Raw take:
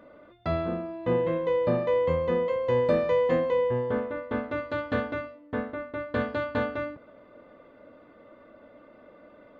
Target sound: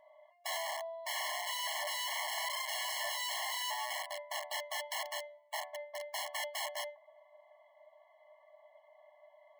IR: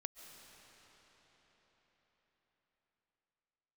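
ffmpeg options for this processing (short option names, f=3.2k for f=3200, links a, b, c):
-af "bandreject=f=1.8k:w=11,aeval=exprs='(mod(20*val(0)+1,2)-1)/20':c=same,afftfilt=real='re*eq(mod(floor(b*sr/1024/560),2),1)':imag='im*eq(mod(floor(b*sr/1024/560),2),1)':win_size=1024:overlap=0.75,volume=-3.5dB"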